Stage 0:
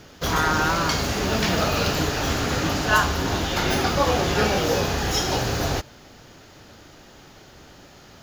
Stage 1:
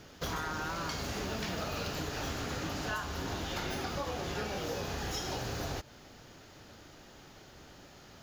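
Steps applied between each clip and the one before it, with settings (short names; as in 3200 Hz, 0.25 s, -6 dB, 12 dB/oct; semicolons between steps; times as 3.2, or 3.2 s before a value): compressor, threshold -27 dBFS, peak gain reduction 12.5 dB; gain -6.5 dB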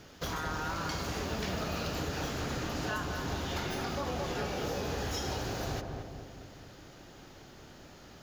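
darkening echo 0.22 s, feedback 60%, low-pass 990 Hz, level -3 dB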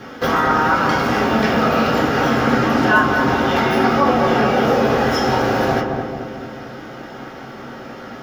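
reverb RT60 0.35 s, pre-delay 3 ms, DRR -4 dB; gain +7 dB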